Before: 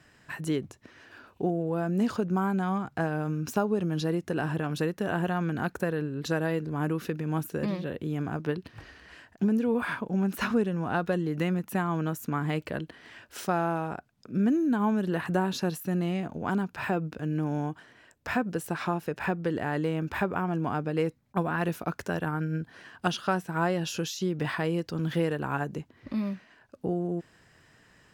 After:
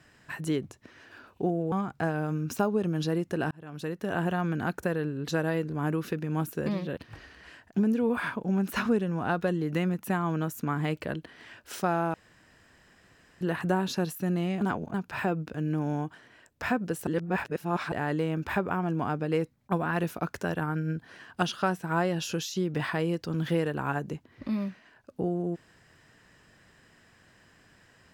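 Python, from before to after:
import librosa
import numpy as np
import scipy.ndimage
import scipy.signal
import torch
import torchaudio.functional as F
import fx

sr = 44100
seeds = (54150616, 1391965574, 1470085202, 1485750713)

y = fx.edit(x, sr, fx.cut(start_s=1.72, length_s=0.97),
    fx.fade_in_span(start_s=4.48, length_s=0.68),
    fx.cut(start_s=7.94, length_s=0.68),
    fx.room_tone_fill(start_s=13.79, length_s=1.27),
    fx.reverse_span(start_s=16.26, length_s=0.33),
    fx.reverse_span(start_s=18.72, length_s=0.85), tone=tone)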